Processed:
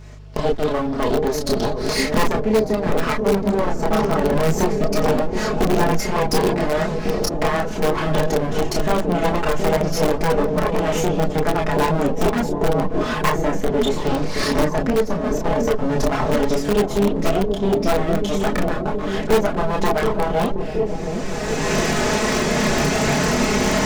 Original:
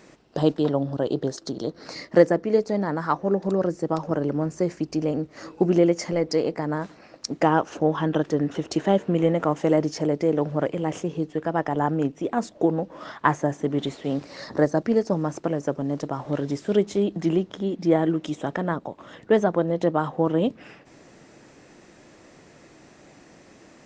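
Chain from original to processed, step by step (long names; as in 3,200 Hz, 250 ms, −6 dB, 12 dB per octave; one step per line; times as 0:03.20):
lower of the sound and its delayed copy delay 4.7 ms
camcorder AGC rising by 23 dB per second
on a send: delay with a low-pass on its return 724 ms, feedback 70%, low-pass 500 Hz, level −4 dB
on the sum: multi-voice chorus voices 6, 0.16 Hz, delay 29 ms, depth 4.7 ms
in parallel at −8 dB: wrap-around overflow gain 15.5 dB
on the sum: hum with harmonics 50 Hz, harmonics 3, −43 dBFS
level +3.5 dB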